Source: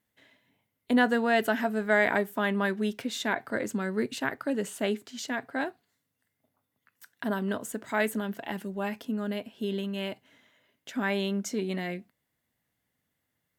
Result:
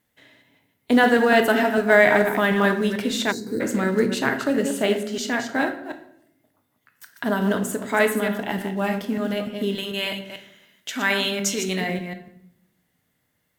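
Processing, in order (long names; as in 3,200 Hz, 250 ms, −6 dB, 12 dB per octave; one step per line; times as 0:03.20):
delay that plays each chunk backwards 148 ms, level −7.5 dB
0:09.75–0:11.81: tilt shelving filter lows −6.5 dB, about 1,100 Hz
in parallel at −10 dB: floating-point word with a short mantissa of 2 bits
on the sum: rectangular room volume 160 cubic metres, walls mixed, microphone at 0.46 metres
0:03.31–0:03.60: gain on a spectral selection 500–3,800 Hz −25 dB
level +4.5 dB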